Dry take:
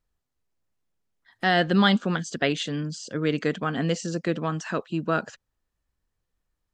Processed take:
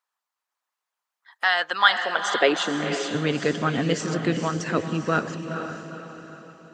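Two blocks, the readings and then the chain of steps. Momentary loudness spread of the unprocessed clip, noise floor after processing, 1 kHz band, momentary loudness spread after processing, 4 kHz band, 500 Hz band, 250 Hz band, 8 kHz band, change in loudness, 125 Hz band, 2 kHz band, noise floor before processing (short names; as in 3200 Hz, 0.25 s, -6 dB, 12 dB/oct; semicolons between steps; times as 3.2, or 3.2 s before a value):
10 LU, under -85 dBFS, +4.0 dB, 17 LU, +3.5 dB, +2.5 dB, -1.5 dB, +3.5 dB, +2.0 dB, -0.5 dB, +5.0 dB, -81 dBFS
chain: high-pass sweep 990 Hz -> 100 Hz, 1.88–3.31; diffused feedback echo 0.47 s, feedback 45%, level -5 dB; harmonic-percussive split percussive +8 dB; gain -4 dB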